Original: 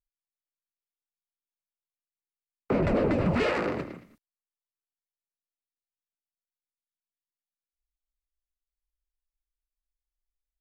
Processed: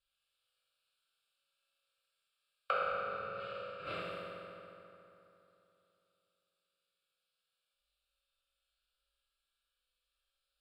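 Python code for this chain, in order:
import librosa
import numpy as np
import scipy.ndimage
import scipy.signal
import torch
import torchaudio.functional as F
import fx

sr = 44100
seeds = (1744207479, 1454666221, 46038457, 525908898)

y = scipy.signal.sosfilt(scipy.signal.butter(2, 6000.0, 'lowpass', fs=sr, output='sos'), x)
y = fx.tilt_shelf(y, sr, db=-9.5, hz=930.0)
y = fx.rider(y, sr, range_db=10, speed_s=0.5)
y = fx.gate_flip(y, sr, shuts_db=-24.0, range_db=-32)
y = fx.fixed_phaser(y, sr, hz=1300.0, stages=8)
y = fx.rev_fdn(y, sr, rt60_s=3.1, lf_ratio=1.0, hf_ratio=0.65, size_ms=11.0, drr_db=-9.5)
y = y * 10.0 ** (5.5 / 20.0)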